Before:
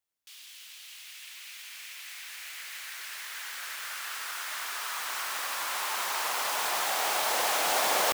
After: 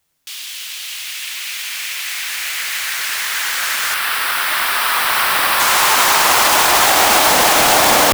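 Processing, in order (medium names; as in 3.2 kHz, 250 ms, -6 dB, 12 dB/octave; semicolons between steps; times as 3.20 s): octave divider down 1 oct, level +3 dB; 3.94–5.60 s: peaking EQ 6.7 kHz -11.5 dB 0.56 oct; loudness maximiser +20.5 dB; trim -1 dB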